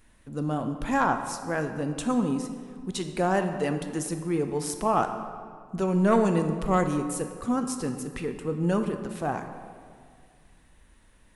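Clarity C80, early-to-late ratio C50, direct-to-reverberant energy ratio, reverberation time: 9.0 dB, 8.0 dB, 6.5 dB, 2.0 s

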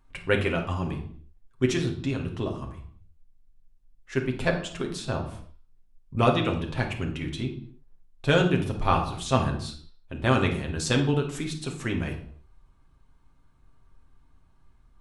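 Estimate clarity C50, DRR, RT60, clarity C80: 8.0 dB, 1.5 dB, 0.65 s, 12.0 dB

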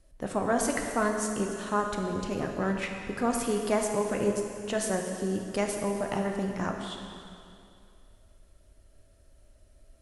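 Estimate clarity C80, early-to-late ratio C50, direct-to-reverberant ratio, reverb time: 5.0 dB, 3.5 dB, 2.0 dB, 2.5 s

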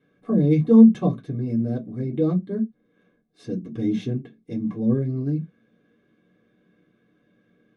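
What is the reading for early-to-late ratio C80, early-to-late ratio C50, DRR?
30.0 dB, 20.5 dB, -3.5 dB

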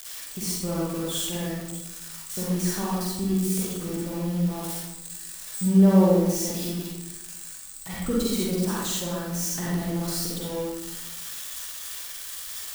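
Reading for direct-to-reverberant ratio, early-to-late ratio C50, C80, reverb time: -6.5 dB, -3.5 dB, 1.0 dB, 1.1 s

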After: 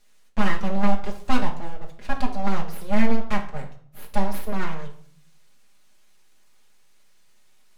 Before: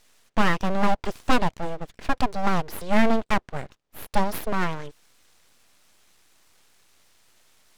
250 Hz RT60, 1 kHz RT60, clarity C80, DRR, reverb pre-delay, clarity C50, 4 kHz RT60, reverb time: 0.70 s, 0.55 s, 15.0 dB, -1.0 dB, 5 ms, 10.0 dB, 0.45 s, 0.55 s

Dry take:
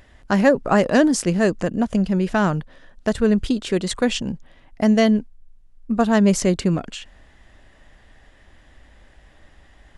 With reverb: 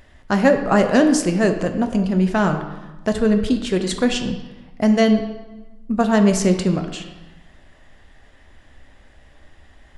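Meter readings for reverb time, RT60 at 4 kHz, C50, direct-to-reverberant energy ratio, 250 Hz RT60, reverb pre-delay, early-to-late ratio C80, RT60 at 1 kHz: 1.1 s, 0.90 s, 8.5 dB, 5.5 dB, 1.3 s, 4 ms, 10.0 dB, 1.2 s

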